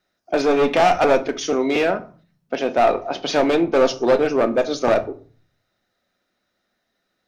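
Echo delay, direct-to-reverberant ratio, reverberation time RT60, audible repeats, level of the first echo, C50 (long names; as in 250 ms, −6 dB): no echo audible, 9.0 dB, 0.40 s, no echo audible, no echo audible, 16.5 dB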